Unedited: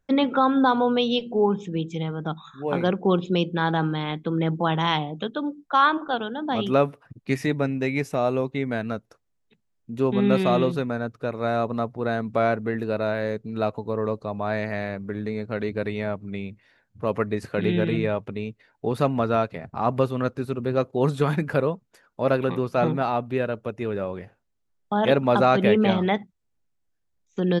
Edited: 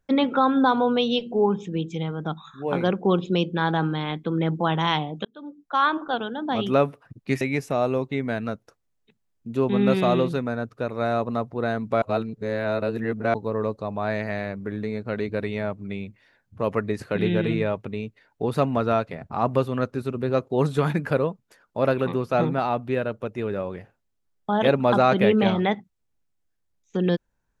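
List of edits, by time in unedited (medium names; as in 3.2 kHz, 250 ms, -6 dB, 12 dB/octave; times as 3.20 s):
5.25–6.31 s: fade in equal-power
7.41–7.84 s: delete
12.45–13.77 s: reverse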